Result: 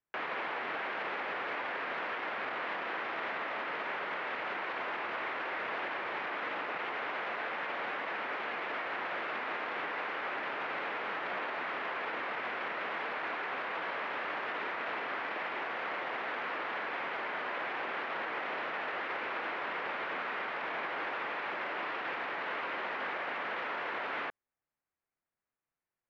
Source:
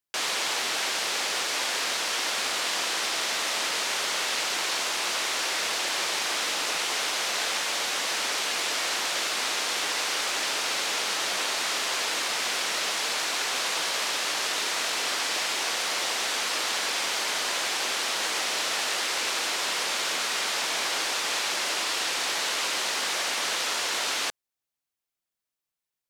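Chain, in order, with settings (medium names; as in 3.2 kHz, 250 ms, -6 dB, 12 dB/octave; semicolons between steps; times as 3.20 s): low-pass 2.1 kHz 24 dB/octave; peak limiter -31 dBFS, peak gain reduction 10 dB; trim +2.5 dB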